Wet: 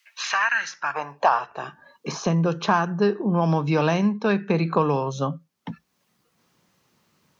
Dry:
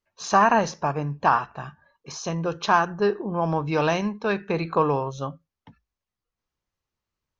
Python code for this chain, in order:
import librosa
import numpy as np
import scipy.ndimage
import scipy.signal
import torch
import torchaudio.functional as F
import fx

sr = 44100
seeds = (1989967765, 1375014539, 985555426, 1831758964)

y = fx.spec_box(x, sr, start_s=0.49, length_s=0.46, low_hz=380.0, high_hz=1300.0, gain_db=-12)
y = fx.filter_sweep_highpass(y, sr, from_hz=2200.0, to_hz=170.0, start_s=0.37, end_s=2.21, q=2.1)
y = fx.band_squash(y, sr, depth_pct=70)